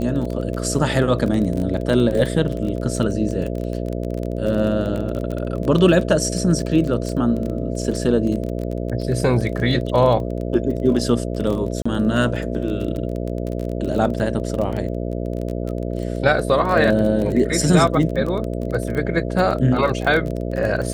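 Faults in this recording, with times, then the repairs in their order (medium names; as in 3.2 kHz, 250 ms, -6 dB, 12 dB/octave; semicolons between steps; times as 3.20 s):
buzz 60 Hz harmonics 11 -25 dBFS
crackle 22 per s -24 dBFS
11.82–11.86 s: dropout 35 ms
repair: de-click; de-hum 60 Hz, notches 11; interpolate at 11.82 s, 35 ms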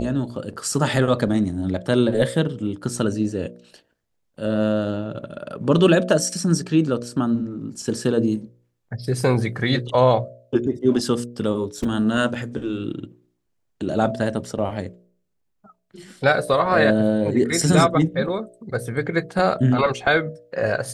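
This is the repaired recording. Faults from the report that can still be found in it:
nothing left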